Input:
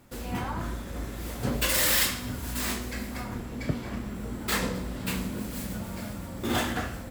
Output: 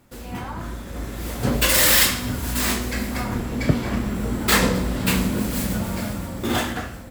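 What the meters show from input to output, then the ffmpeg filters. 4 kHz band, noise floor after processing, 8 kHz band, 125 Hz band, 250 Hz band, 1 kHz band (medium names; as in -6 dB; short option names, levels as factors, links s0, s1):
+8.0 dB, -36 dBFS, +8.0 dB, +8.5 dB, +8.5 dB, +7.0 dB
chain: -af "dynaudnorm=f=310:g=7:m=3.76"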